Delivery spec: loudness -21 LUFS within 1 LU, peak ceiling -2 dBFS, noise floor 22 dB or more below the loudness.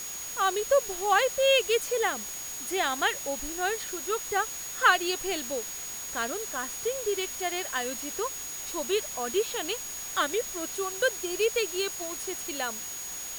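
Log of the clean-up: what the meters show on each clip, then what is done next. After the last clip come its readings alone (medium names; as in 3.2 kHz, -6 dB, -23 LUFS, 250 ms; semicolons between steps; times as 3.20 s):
steady tone 6.7 kHz; tone level -37 dBFS; noise floor -38 dBFS; noise floor target -51 dBFS; loudness -28.5 LUFS; peak level -8.0 dBFS; loudness target -21.0 LUFS
-> band-stop 6.7 kHz, Q 30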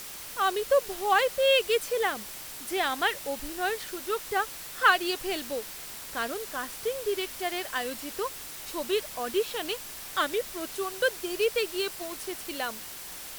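steady tone not found; noise floor -41 dBFS; noise floor target -51 dBFS
-> noise reduction 10 dB, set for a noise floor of -41 dBFS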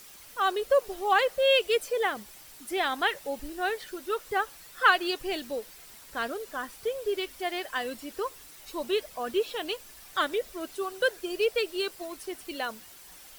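noise floor -50 dBFS; noise floor target -52 dBFS
-> noise reduction 6 dB, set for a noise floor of -50 dBFS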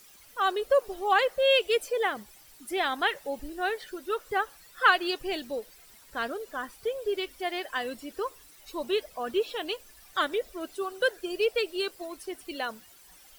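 noise floor -55 dBFS; loudness -29.5 LUFS; peak level -8.5 dBFS; loudness target -21.0 LUFS
-> trim +8.5 dB; peak limiter -2 dBFS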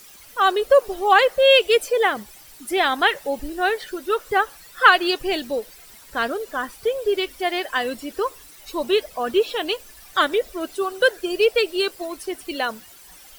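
loudness -21.0 LUFS; peak level -2.0 dBFS; noise floor -46 dBFS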